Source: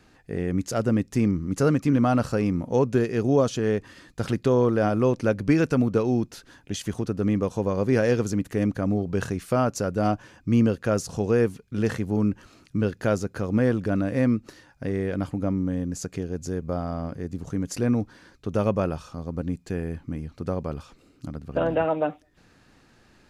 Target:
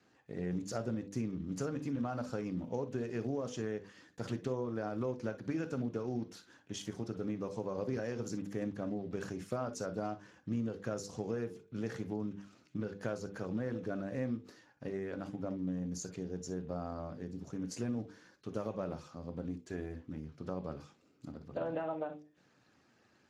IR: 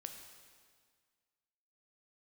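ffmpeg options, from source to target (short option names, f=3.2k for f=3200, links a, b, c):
-filter_complex "[0:a]lowshelf=f=74:g=-9.5,asettb=1/sr,asplit=3[a][b][c];[a]atrim=end=3.124[d];[b]atrim=start=3.12:end=3.67,asetpts=PTS-STARTPTS,afade=t=in:d=0.004:c=qsin,afade=t=out:st=0.546:d=0.004:c=qsin,aeval=exprs='val(0)*gte(abs(val(0)),0.00376)':c=same[e];[c]atrim=start=3.666[f];[d][e]acrossfade=d=0.004:c1=hsin:c2=qsin[g];[g][f]acrossfade=d=0.004:c1=qsin:c2=hsin,asettb=1/sr,asplit=3[h][i][j];[h]atrim=end=17.814[k];[i]atrim=start=17.81:end=18.7,asetpts=PTS-STARTPTS,afade=t=in:d=0.004:c=qsin,afade=t=out:st=0.886:d=0.004:c=qsin,highshelf=f=5.5k:g=6[l];[j]atrim=start=18.696[m];[k][l]acrossfade=d=0.004:c1=hsin:c2=qsin[n];[n][m]acrossfade=d=0.004:c1=qsin:c2=hsin,asettb=1/sr,asplit=3[o][p][q];[o]atrim=end=19.434[r];[p]atrim=start=19.43:end=20.1,asetpts=PTS-STARTPTS,afade=t=in:d=0.004:c=qsin,afade=t=out:st=0.666:d=0.004:c=qsin,aecho=1:1:3:0.48,atrim=end_sample=29547[s];[q]atrim=start=20.096[t];[r][s]acrossfade=d=0.004:c1=hsin:c2=qsin[u];[u][t]acrossfade=d=0.004:c1=qsin:c2=hsin,bandreject=f=50:t=h:w=6,bandreject=f=100:t=h:w=6,bandreject=f=150:t=h:w=6,bandreject=f=200:t=h:w=6,bandreject=f=250:t=h:w=6,bandreject=f=300:t=h:w=6,bandreject=f=350:t=h:w=6,bandreject=f=400:t=h:w=6,bandreject=f=450:t=h:w=6,bandreject=f=500:t=h:w=6,acompressor=threshold=-24dB:ratio=16[v];[1:a]atrim=start_sample=2205,atrim=end_sample=3087[w];[v][w]afir=irnorm=-1:irlink=0,volume=-4dB" -ar 32000 -c:a libspeex -b:a 15k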